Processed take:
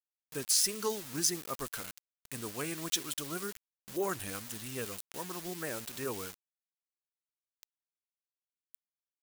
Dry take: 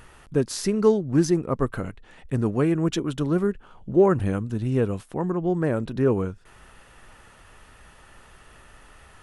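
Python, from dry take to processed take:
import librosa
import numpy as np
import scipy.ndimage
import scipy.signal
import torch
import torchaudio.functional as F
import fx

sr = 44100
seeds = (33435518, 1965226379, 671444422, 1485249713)

y = fx.spec_quant(x, sr, step_db=15)
y = np.where(np.abs(y) >= 10.0 ** (-37.0 / 20.0), y, 0.0)
y = librosa.effects.preemphasis(y, coef=0.97, zi=[0.0])
y = y * 10.0 ** (7.5 / 20.0)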